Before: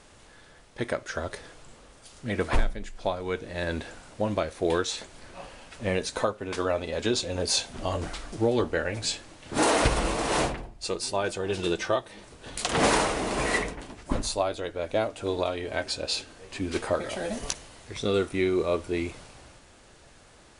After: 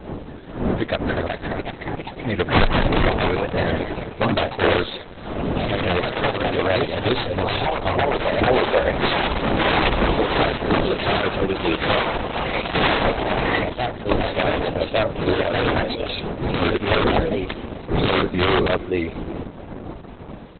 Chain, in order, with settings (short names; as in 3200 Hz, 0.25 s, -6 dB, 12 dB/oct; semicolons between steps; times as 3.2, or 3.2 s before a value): tracing distortion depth 0.059 ms; wind noise 420 Hz -36 dBFS; 17.55–18.69 doubler 43 ms -5 dB; on a send: echo 0.33 s -20.5 dB; on the sum: wrapped overs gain 16 dB; vibrato 4.5 Hz 94 cents; 8.47–9.01 speaker cabinet 330–2400 Hz, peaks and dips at 550 Hz +8 dB, 790 Hz +10 dB, 1300 Hz -6 dB, 1900 Hz +4 dB; echoes that change speed 0.473 s, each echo +2 st, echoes 3; gain +7.5 dB; Opus 8 kbps 48000 Hz